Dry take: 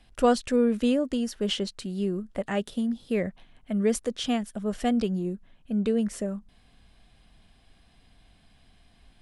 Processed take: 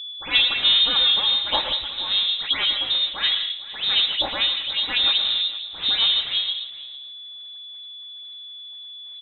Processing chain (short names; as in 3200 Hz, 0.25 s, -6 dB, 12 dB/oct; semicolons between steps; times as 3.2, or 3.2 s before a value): minimum comb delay 3.6 ms; low shelf 500 Hz -8.5 dB; in parallel at +1 dB: limiter -25.5 dBFS, peak gain reduction 11 dB; on the sum: crossover distortion -55 dBFS; modulation noise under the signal 10 dB; dispersion lows, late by 0.13 s, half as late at 1800 Hz; whine 460 Hz -37 dBFS; air absorption 140 m; echo 0.456 s -18.5 dB; on a send at -7 dB: reverb RT60 0.60 s, pre-delay 0.111 s; on the sum: inverted band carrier 3900 Hz; gain +6 dB